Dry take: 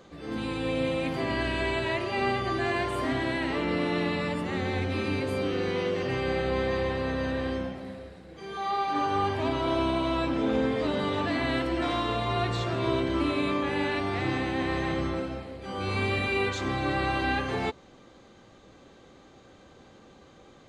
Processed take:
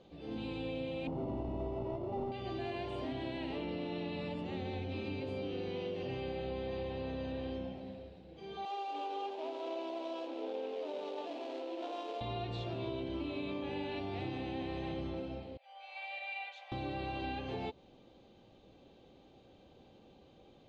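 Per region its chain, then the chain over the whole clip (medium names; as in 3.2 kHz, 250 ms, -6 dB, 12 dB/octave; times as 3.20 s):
1.07–2.32 s: square wave that keeps the level + Savitzky-Golay filter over 65 samples
8.65–12.21 s: median filter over 25 samples + high-pass 390 Hz 24 dB/octave
15.57–16.72 s: rippled Chebyshev high-pass 540 Hz, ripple 9 dB + upward expansion, over -44 dBFS
whole clip: Chebyshev low-pass 3.3 kHz, order 2; high-order bell 1.5 kHz -11 dB 1.2 oct; compression, threshold -30 dBFS; trim -5.5 dB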